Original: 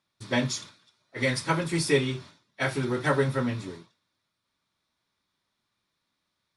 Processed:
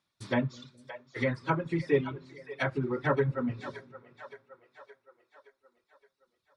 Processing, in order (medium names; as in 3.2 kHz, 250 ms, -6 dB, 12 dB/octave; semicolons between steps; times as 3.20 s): low-pass that closes with the level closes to 1.6 kHz, closed at -24 dBFS; two-band feedback delay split 450 Hz, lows 210 ms, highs 569 ms, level -11 dB; reverb removal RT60 1.9 s; trim -1.5 dB